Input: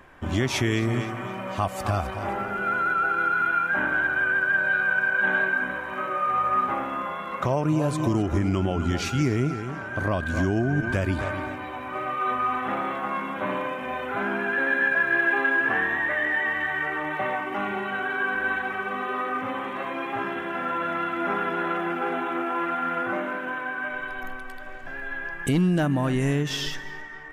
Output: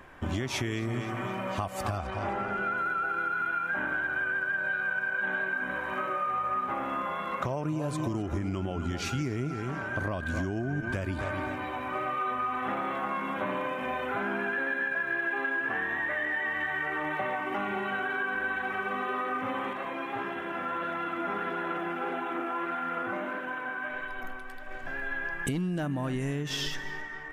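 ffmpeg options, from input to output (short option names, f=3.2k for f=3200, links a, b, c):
-filter_complex "[0:a]asettb=1/sr,asplit=3[a][b][c];[a]atrim=end=1.984[d];[b]atrim=start=1.98:end=2.77,asetpts=PTS-STARTPTS,afade=t=in:d=0.004:c=qsin,afade=t=out:st=0.786:d=0.004:c=qsin,lowpass=7.3k[e];[c]atrim=start=2.766[f];[d][e]acrossfade=d=0.004:c1=hsin:c2=qsin[g];[g][f]acrossfade=d=0.004:c1=qsin:c2=hsin,asettb=1/sr,asplit=3[h][i][j];[h]atrim=end=19.734[k];[i]atrim=start=19.73:end=24.71,asetpts=PTS-STARTPTS,afade=t=in:d=0.004:c=qsin,afade=t=out:st=4.976:d=0.004:c=qsin,flanger=delay=1:depth=9.9:regen=71:speed=1.6:shape=sinusoidal[l];[j]atrim=start=24.706[m];[k][l]acrossfade=d=0.004:c1=hsin:c2=qsin[n];[n][m]acrossfade=d=0.004:c1=qsin:c2=hsin,acompressor=threshold=-28dB:ratio=6"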